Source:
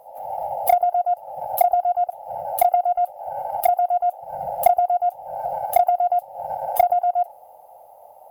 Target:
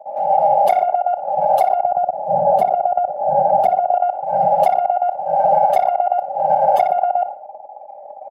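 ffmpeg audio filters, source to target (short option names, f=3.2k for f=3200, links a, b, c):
-filter_complex "[0:a]asettb=1/sr,asplit=3[a][b][c];[a]atrim=end=1.834[d];[b]atrim=start=1.83:end=3.94,asetpts=PTS-STARTPTS,afade=t=in:d=0.004:c=qsin,afade=t=out:st=2.106:d=0.004:c=qsin,tiltshelf=f=710:g=9.5[e];[c]atrim=start=3.936[f];[d][e]acrossfade=d=0.004:c1=hsin:c2=qsin[g];[g][f]acrossfade=d=0.004:c1=qsin:c2=hsin,aecho=1:1:5:0.8,anlmdn=0.398,highpass=200,lowpass=4.3k,lowshelf=f=450:g=9,asplit=2[h][i];[i]adelay=61,lowpass=f=2.9k:p=1,volume=-11dB,asplit=2[j][k];[k]adelay=61,lowpass=f=2.9k:p=1,volume=0.44,asplit=2[l][m];[m]adelay=61,lowpass=f=2.9k:p=1,volume=0.44,asplit=2[n][o];[o]adelay=61,lowpass=f=2.9k:p=1,volume=0.44,asplit=2[p][q];[q]adelay=61,lowpass=f=2.9k:p=1,volume=0.44[r];[h][j][l][n][p][r]amix=inputs=6:normalize=0,alimiter=level_in=12.5dB:limit=-1dB:release=50:level=0:latency=1,volume=-4dB"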